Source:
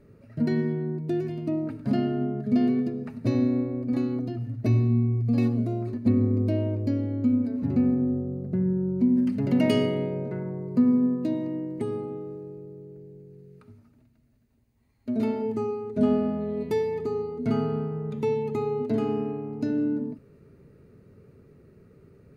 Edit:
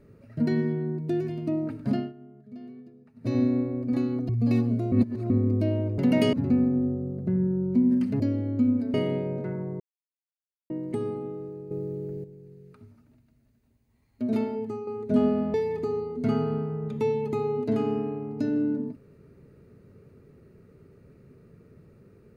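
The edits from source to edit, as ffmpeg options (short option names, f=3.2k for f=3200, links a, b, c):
-filter_complex "[0:a]asplit=16[a][b][c][d][e][f][g][h][i][j][k][l][m][n][o][p];[a]atrim=end=2.13,asetpts=PTS-STARTPTS,afade=t=out:st=1.89:d=0.24:silence=0.0944061[q];[b]atrim=start=2.13:end=3.14,asetpts=PTS-STARTPTS,volume=-20.5dB[r];[c]atrim=start=3.14:end=4.292,asetpts=PTS-STARTPTS,afade=t=in:d=0.24:silence=0.0944061[s];[d]atrim=start=5.158:end=5.792[t];[e]atrim=start=5.788:end=6.172,asetpts=PTS-STARTPTS,areverse[u];[f]atrim=start=6.168:end=6.852[v];[g]atrim=start=9.458:end=9.812[w];[h]atrim=start=7.588:end=9.462[x];[i]atrim=start=6.848:end=7.592[y];[j]atrim=start=9.808:end=10.67,asetpts=PTS-STARTPTS,afade=t=out:st=0.858:d=0.004:c=hsin[z];[k]atrim=start=10.67:end=11.57,asetpts=PTS-STARTPTS,volume=0[aa];[l]atrim=start=11.57:end=12.582,asetpts=PTS-STARTPTS,afade=t=in:d=0.004:c=hsin[ab];[m]atrim=start=12.578:end=13.112,asetpts=PTS-STARTPTS,volume=10dB[ac];[n]atrim=start=13.108:end=15.74,asetpts=PTS-STARTPTS,afade=t=out:st=2.092:d=0.54:silence=0.375837[ad];[o]atrim=start=15.74:end=16.412,asetpts=PTS-STARTPTS,afade=t=in:d=0.004:c=hsin:silence=0.375837[ae];[p]atrim=start=16.758[af];[q][r][s]concat=n=3:v=0:a=1[ag];[ag][t]acrossfade=d=0.004:c1=hsin:c2=hsin[ah];[ah][u]acrossfade=d=0.004:c1=hsin:c2=hsin[ai];[ai][v]acrossfade=d=0.004:c1=hsin:c2=hsin[aj];[aj][w]acrossfade=d=0.004:c1=hsin:c2=hsin[ak];[ak][x]acrossfade=d=0.004:c1=hsin:c2=hsin[al];[al][y]acrossfade=d=0.004:c1=hsin:c2=hsin[am];[z][aa][ab]concat=n=3:v=0:a=1[an];[am][an]acrossfade=d=0.004:c1=hsin:c2=hsin[ao];[ao][ac]acrossfade=d=0.004:c1=hsin:c2=hsin[ap];[ad][ae]concat=n=2:v=0:a=1[aq];[ap][aq]acrossfade=d=0.004:c1=hsin:c2=hsin[ar];[ar][af]acrossfade=d=0.004:c1=hsin:c2=hsin"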